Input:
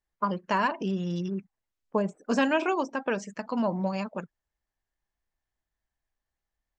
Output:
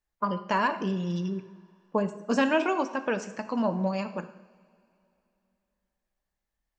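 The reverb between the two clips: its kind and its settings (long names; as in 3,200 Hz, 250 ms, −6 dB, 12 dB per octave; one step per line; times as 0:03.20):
coupled-rooms reverb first 0.77 s, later 3 s, from −18 dB, DRR 9 dB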